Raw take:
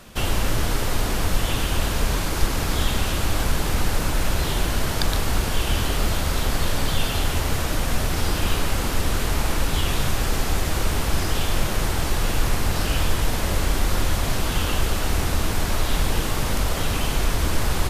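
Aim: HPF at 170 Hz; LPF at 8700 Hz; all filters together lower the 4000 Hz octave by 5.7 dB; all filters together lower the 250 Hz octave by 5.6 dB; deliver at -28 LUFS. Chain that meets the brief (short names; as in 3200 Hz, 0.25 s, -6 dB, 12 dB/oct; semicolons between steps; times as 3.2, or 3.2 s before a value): HPF 170 Hz; LPF 8700 Hz; bell 250 Hz -6 dB; bell 4000 Hz -7.5 dB; gain +1.5 dB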